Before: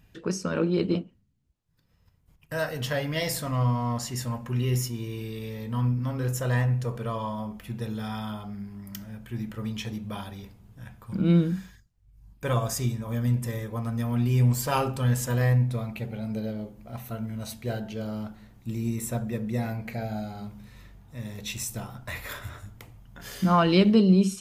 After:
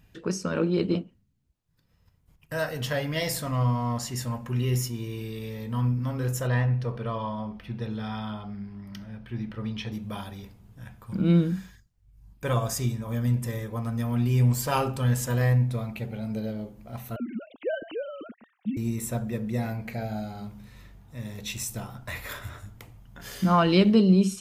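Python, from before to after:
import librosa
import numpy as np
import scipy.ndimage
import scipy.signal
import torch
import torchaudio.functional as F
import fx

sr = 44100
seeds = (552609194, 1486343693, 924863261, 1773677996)

y = fx.savgol(x, sr, points=15, at=(6.47, 9.92))
y = fx.sine_speech(y, sr, at=(17.16, 18.77))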